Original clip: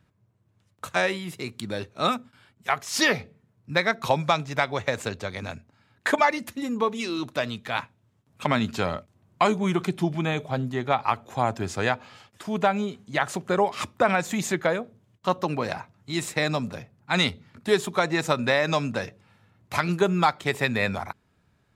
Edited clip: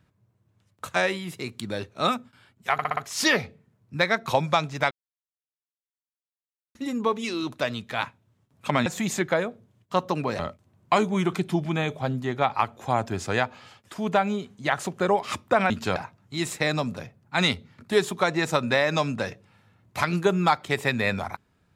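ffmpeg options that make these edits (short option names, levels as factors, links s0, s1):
-filter_complex "[0:a]asplit=11[s0][s1][s2][s3][s4][s5][s6][s7][s8][s9][s10];[s0]atrim=end=2.792[s11];[s1]atrim=start=2.728:end=2.792[s12];[s2]atrim=start=2.728:end=2.792[s13];[s3]atrim=start=2.728:end=2.792[s14];[s4]atrim=start=2.728:end=4.67,asetpts=PTS-STARTPTS,afade=t=out:st=1.938:d=0.004:c=hsin[s15];[s5]atrim=start=4.67:end=6.51,asetpts=PTS-STARTPTS,volume=0[s16];[s6]atrim=start=6.51:end=8.622,asetpts=PTS-STARTPTS,afade=t=in:d=0.004:c=hsin[s17];[s7]atrim=start=14.188:end=15.722[s18];[s8]atrim=start=8.878:end=14.192[s19];[s9]atrim=start=8.618:end=8.882[s20];[s10]atrim=start=15.718[s21];[s11][s12]acrossfade=d=0.004:c1=hsin:c2=hsin[s22];[s22][s13]acrossfade=d=0.004:c1=hsin:c2=hsin[s23];[s23][s14]acrossfade=d=0.004:c1=hsin:c2=hsin[s24];[s15][s16][s17]concat=n=3:v=0:a=1[s25];[s24][s25]acrossfade=d=0.004:c1=hsin:c2=hsin[s26];[s26][s18]acrossfade=d=0.004:c1=hsin:c2=hsin[s27];[s27][s19]acrossfade=d=0.004:c1=hsin:c2=hsin[s28];[s28][s20]acrossfade=d=0.004:c1=hsin:c2=hsin[s29];[s29][s21]acrossfade=d=0.004:c1=hsin:c2=hsin"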